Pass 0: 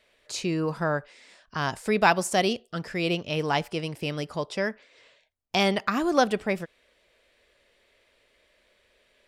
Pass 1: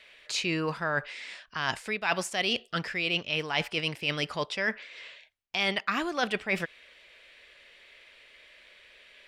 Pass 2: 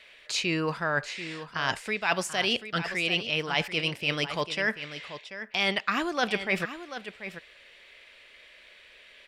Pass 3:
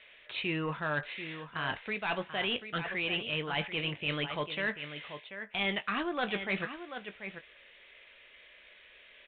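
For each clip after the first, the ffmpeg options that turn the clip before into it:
-af "equalizer=f=2.5k:w=0.56:g=13.5,areverse,acompressor=threshold=-26dB:ratio=6,areverse"
-af "aecho=1:1:737:0.266,volume=1.5dB"
-filter_complex "[0:a]aresample=8000,asoftclip=type=tanh:threshold=-21dB,aresample=44100,asplit=2[a][b];[b]adelay=20,volume=-11dB[c];[a][c]amix=inputs=2:normalize=0,volume=-3.5dB"

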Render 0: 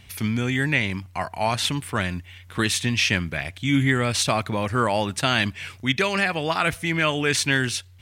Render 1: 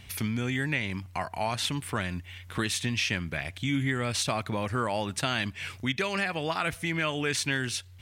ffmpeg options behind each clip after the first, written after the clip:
-af "acompressor=threshold=-31dB:ratio=2"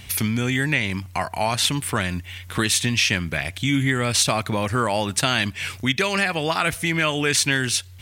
-af "highshelf=f=4.9k:g=6.5,volume=7dB"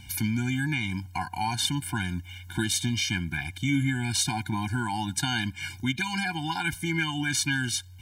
-af "afftfilt=real='re*eq(mod(floor(b*sr/1024/350),2),0)':imag='im*eq(mod(floor(b*sr/1024/350),2),0)':win_size=1024:overlap=0.75,volume=-4dB"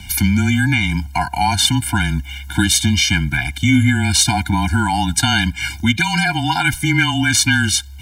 -af "afreqshift=-22,acontrast=75,volume=5.5dB"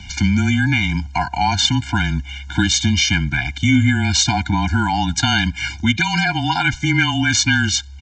-af "aresample=16000,aresample=44100,volume=-1dB"

